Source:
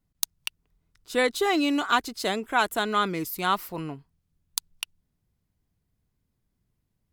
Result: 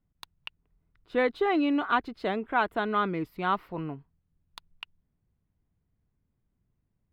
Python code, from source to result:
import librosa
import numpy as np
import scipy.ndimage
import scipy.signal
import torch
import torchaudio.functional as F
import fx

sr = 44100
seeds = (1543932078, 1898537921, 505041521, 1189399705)

y = fx.air_absorb(x, sr, metres=460.0)